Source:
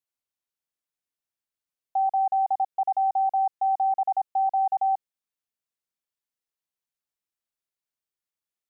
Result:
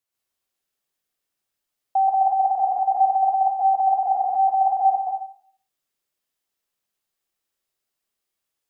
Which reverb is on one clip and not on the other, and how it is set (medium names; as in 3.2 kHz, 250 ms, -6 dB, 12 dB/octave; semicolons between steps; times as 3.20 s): plate-style reverb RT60 0.53 s, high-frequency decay 0.9×, pre-delay 110 ms, DRR -3 dB; trim +4.5 dB